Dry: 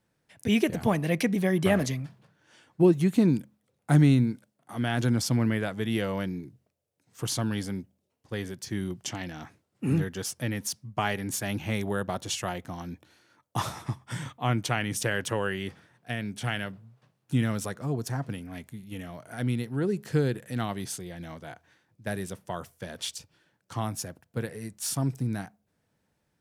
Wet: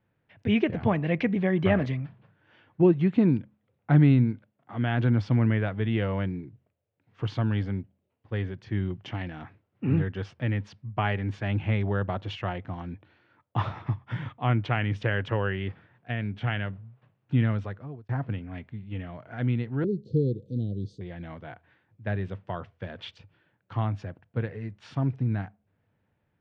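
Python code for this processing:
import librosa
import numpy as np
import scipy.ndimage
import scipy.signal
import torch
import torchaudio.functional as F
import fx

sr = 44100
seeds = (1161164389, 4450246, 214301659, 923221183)

y = fx.cheby1_bandstop(x, sr, low_hz=500.0, high_hz=4000.0, order=4, at=(19.84, 21.01))
y = fx.edit(y, sr, fx.fade_out_span(start_s=17.46, length_s=0.63), tone=tone)
y = scipy.signal.sosfilt(scipy.signal.butter(4, 3000.0, 'lowpass', fs=sr, output='sos'), y)
y = fx.peak_eq(y, sr, hz=100.0, db=9.5, octaves=0.4)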